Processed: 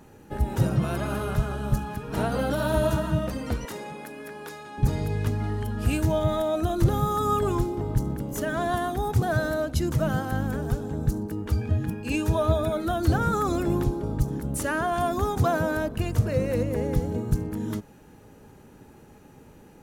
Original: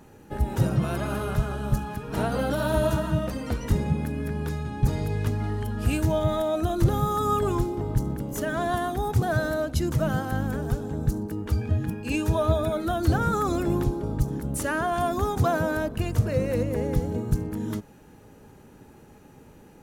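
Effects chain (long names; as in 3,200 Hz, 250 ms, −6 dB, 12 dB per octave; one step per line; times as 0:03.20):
0:03.65–0:04.78: high-pass filter 490 Hz 12 dB per octave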